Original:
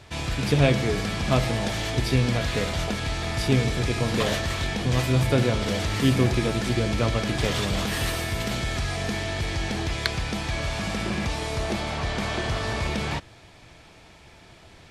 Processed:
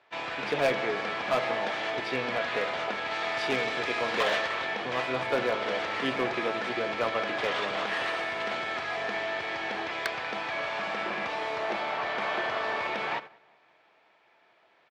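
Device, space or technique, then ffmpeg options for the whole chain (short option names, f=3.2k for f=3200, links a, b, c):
walkie-talkie: -filter_complex "[0:a]asettb=1/sr,asplit=3[a][b][c];[a]atrim=end=3.114[d];[b]atrim=start=3.11:end=4.48,asetpts=PTS-STARTPTS,afade=t=in:d=0.004:c=qsin,afade=t=out:st=1.366:d=0.004:c=qsin,highshelf=f=2.5k:g=5.5[e];[c]atrim=start=4.476[f];[d][e]acrossfade=d=0.004:c1=hsin:c2=qsin[g];[g][f]acrossfade=d=0.004:c1=qsin:c2=hsin,highpass=580,lowpass=2.3k,asplit=2[h][i];[i]adelay=188,lowpass=f=2.7k:p=1,volume=-15dB,asplit=2[j][k];[k]adelay=188,lowpass=f=2.7k:p=1,volume=0.5,asplit=2[l][m];[m]adelay=188,lowpass=f=2.7k:p=1,volume=0.5,asplit=2[n][o];[o]adelay=188,lowpass=f=2.7k:p=1,volume=0.5,asplit=2[p][q];[q]adelay=188,lowpass=f=2.7k:p=1,volume=0.5[r];[h][j][l][n][p][r]amix=inputs=6:normalize=0,asoftclip=type=hard:threshold=-22dB,agate=range=-11dB:threshold=-42dB:ratio=16:detection=peak,volume=2.5dB"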